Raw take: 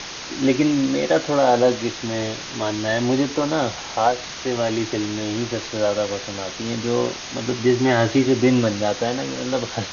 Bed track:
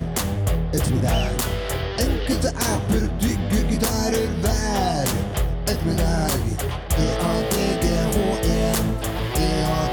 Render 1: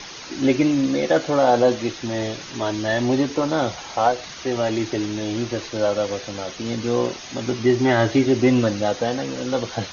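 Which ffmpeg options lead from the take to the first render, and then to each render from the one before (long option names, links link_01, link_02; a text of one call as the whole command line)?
ffmpeg -i in.wav -af "afftdn=noise_reduction=8:noise_floor=-34" out.wav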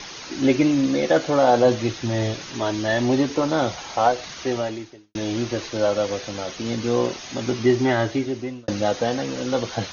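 ffmpeg -i in.wav -filter_complex "[0:a]asettb=1/sr,asplit=3[link_01][link_02][link_03];[link_01]atrim=end=1.654[link_04];[link_02]atrim=start=1.65:end=2.34,asetpts=PTS-STARTPTS,afade=type=in:duration=0.004:curve=qsin,afade=type=out:start_time=0.686:duration=0.004:curve=qsin,equalizer=frequency=110:width_type=o:width=0.77:gain=7.5[link_05];[link_03]atrim=start=2.336[link_06];[link_04][link_05]acrossfade=duration=0.004:curve1=hsin:curve2=qsin[link_07];[link_07][link_06]acrossfade=duration=0.004:curve1=qsin:curve2=hsin,asplit=3[link_08][link_09][link_10];[link_08]atrim=end=5.15,asetpts=PTS-STARTPTS,afade=type=out:start_time=4.51:duration=0.64:curve=qua[link_11];[link_09]atrim=start=5.15:end=8.68,asetpts=PTS-STARTPTS,afade=type=in:duration=0.004:curve=hsin,afade=type=out:start_time=2.52:duration=1.01[link_12];[link_10]atrim=start=8.68,asetpts=PTS-STARTPTS,afade=type=in:duration=0.004:curve=hsin[link_13];[link_11][link_12][link_13]concat=n=3:v=0:a=1" out.wav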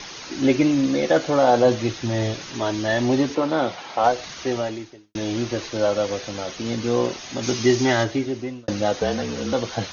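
ffmpeg -i in.wav -filter_complex "[0:a]asettb=1/sr,asplit=3[link_01][link_02][link_03];[link_01]atrim=end=3.354[link_04];[link_02]atrim=start=3.35:end=4.04,asetpts=PTS-STARTPTS,afade=type=in:duration=0.004:curve=qsin,afade=type=out:start_time=0.686:duration=0.004:curve=qsin,highpass=170,lowpass=4100[link_05];[link_03]atrim=start=4.036[link_06];[link_04][link_05]acrossfade=duration=0.004:curve1=hsin:curve2=qsin[link_07];[link_07][link_06]acrossfade=duration=0.004:curve1=qsin:curve2=hsin,asplit=3[link_08][link_09][link_10];[link_08]afade=type=out:start_time=7.42:duration=0.02[link_11];[link_09]aemphasis=mode=production:type=75kf,afade=type=in:start_time=7.42:duration=0.02,afade=type=out:start_time=8.03:duration=0.02[link_12];[link_10]afade=type=in:start_time=8.03:duration=0.02[link_13];[link_11][link_12][link_13]amix=inputs=3:normalize=0,asettb=1/sr,asplit=3[link_14][link_15][link_16];[link_14]atrim=end=9.004[link_17];[link_15]atrim=start=9:end=9.53,asetpts=PTS-STARTPTS,afade=type=in:duration=0.004:curve=qsin,afade=type=out:start_time=0.526:duration=0.004:curve=qsin,afreqshift=-37[link_18];[link_16]atrim=start=9.526[link_19];[link_17][link_18]acrossfade=duration=0.004:curve1=hsin:curve2=qsin[link_20];[link_20][link_19]acrossfade=duration=0.004:curve1=qsin:curve2=hsin" out.wav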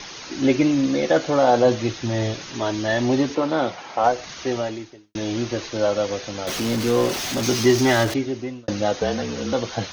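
ffmpeg -i in.wav -filter_complex "[0:a]asettb=1/sr,asplit=3[link_01][link_02][link_03];[link_01]atrim=end=3.704[link_04];[link_02]atrim=start=3.7:end=4.28,asetpts=PTS-STARTPTS,afade=type=in:duration=0.004:curve=qsin,afade=type=out:start_time=0.576:duration=0.004:curve=qsin,equalizer=frequency=3700:width_type=o:width=0.77:gain=-4.5[link_05];[link_03]atrim=start=4.276[link_06];[link_04][link_05]acrossfade=duration=0.004:curve1=hsin:curve2=qsin[link_07];[link_07][link_06]acrossfade=duration=0.004:curve1=qsin:curve2=hsin,asettb=1/sr,asplit=3[link_08][link_09][link_10];[link_08]atrim=end=6.474[link_11];[link_09]atrim=start=6.47:end=8.14,asetpts=PTS-STARTPTS,afade=type=in:duration=0.004:curve=qsin,afade=type=out:start_time=1.666:duration=0.004:curve=qsin,aeval=exprs='val(0)+0.5*0.0596*sgn(val(0))':channel_layout=same[link_12];[link_10]atrim=start=8.136[link_13];[link_11][link_12]acrossfade=duration=0.004:curve1=hsin:curve2=qsin[link_14];[link_14][link_13]acrossfade=duration=0.004:curve1=qsin:curve2=hsin" out.wav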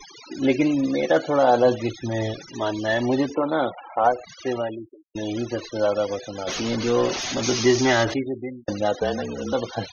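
ffmpeg -i in.wav -af "afftfilt=real='re*gte(hypot(re,im),0.0316)':imag='im*gte(hypot(re,im),0.0316)':win_size=1024:overlap=0.75,equalizer=frequency=130:width_type=o:width=2.4:gain=-4" out.wav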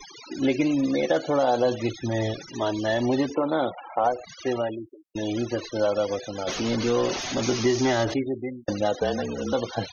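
ffmpeg -i in.wav -filter_complex "[0:a]acrossover=split=1100|2600[link_01][link_02][link_03];[link_01]acompressor=threshold=-19dB:ratio=4[link_04];[link_02]acompressor=threshold=-38dB:ratio=4[link_05];[link_03]acompressor=threshold=-33dB:ratio=4[link_06];[link_04][link_05][link_06]amix=inputs=3:normalize=0" out.wav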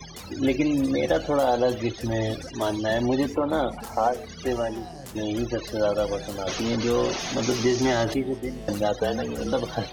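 ffmpeg -i in.wav -i bed.wav -filter_complex "[1:a]volume=-18.5dB[link_01];[0:a][link_01]amix=inputs=2:normalize=0" out.wav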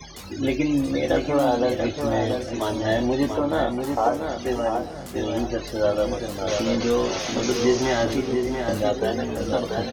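ffmpeg -i in.wav -filter_complex "[0:a]asplit=2[link_01][link_02];[link_02]adelay=21,volume=-7dB[link_03];[link_01][link_03]amix=inputs=2:normalize=0,asplit=2[link_04][link_05];[link_05]adelay=687,lowpass=frequency=2600:poles=1,volume=-5dB,asplit=2[link_06][link_07];[link_07]adelay=687,lowpass=frequency=2600:poles=1,volume=0.32,asplit=2[link_08][link_09];[link_09]adelay=687,lowpass=frequency=2600:poles=1,volume=0.32,asplit=2[link_10][link_11];[link_11]adelay=687,lowpass=frequency=2600:poles=1,volume=0.32[link_12];[link_06][link_08][link_10][link_12]amix=inputs=4:normalize=0[link_13];[link_04][link_13]amix=inputs=2:normalize=0" out.wav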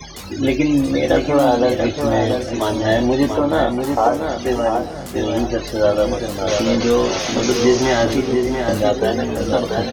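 ffmpeg -i in.wav -af "volume=6dB,alimiter=limit=-3dB:level=0:latency=1" out.wav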